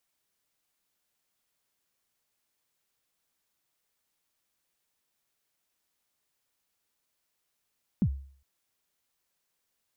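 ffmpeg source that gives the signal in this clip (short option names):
-f lavfi -i "aevalsrc='0.119*pow(10,-3*t/0.5)*sin(2*PI*(240*0.068/log(68/240)*(exp(log(68/240)*min(t,0.068)/0.068)-1)+68*max(t-0.068,0)))':d=0.41:s=44100"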